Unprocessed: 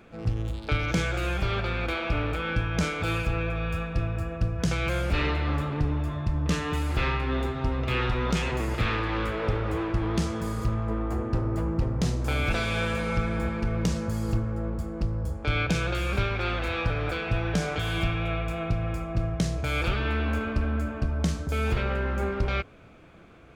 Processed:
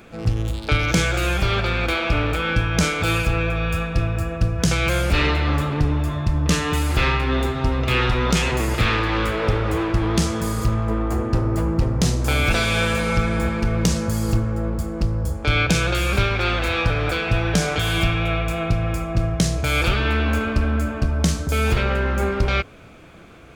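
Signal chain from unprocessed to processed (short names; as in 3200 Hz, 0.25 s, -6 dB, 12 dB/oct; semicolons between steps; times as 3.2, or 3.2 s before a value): high shelf 4300 Hz +8.5 dB; gain +6.5 dB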